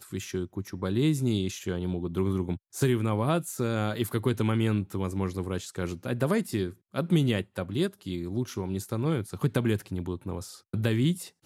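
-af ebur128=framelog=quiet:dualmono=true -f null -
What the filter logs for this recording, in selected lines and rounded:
Integrated loudness:
  I:         -26.4 LUFS
  Threshold: -36.4 LUFS
Loudness range:
  LRA:         1.9 LU
  Threshold: -46.3 LUFS
  LRA low:   -27.2 LUFS
  LRA high:  -25.3 LUFS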